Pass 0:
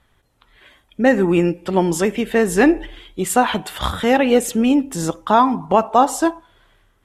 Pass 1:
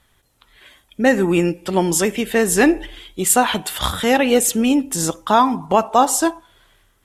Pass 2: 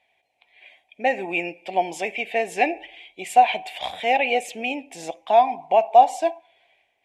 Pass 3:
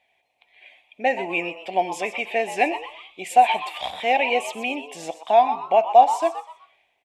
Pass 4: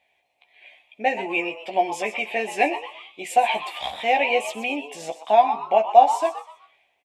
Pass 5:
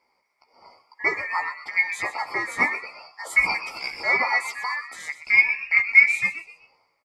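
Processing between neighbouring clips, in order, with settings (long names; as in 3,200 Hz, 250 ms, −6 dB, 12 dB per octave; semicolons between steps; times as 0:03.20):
high-shelf EQ 3,800 Hz +11 dB; level −1 dB
pair of resonant band-passes 1,300 Hz, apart 1.7 octaves; level +6 dB
echo with shifted repeats 124 ms, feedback 33%, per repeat +150 Hz, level −12 dB
double-tracking delay 14 ms −5 dB; level −1 dB
band-splitting scrambler in four parts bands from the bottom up 2143; level −1.5 dB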